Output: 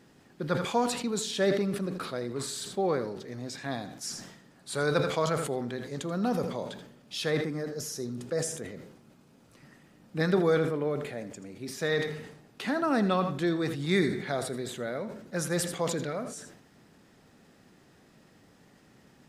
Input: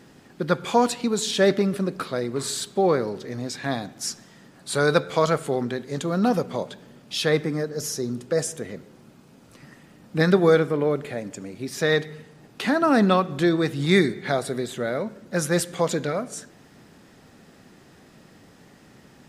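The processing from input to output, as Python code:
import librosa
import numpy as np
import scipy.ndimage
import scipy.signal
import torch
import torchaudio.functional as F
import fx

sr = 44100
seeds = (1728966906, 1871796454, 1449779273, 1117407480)

y = x + 10.0 ** (-14.5 / 20.0) * np.pad(x, (int(82 * sr / 1000.0), 0))[:len(x)]
y = fx.sustainer(y, sr, db_per_s=65.0)
y = F.gain(torch.from_numpy(y), -8.0).numpy()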